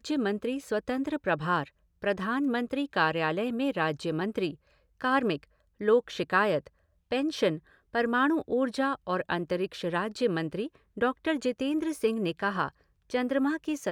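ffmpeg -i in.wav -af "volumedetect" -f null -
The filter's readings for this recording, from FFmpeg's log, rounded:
mean_volume: -29.5 dB
max_volume: -10.7 dB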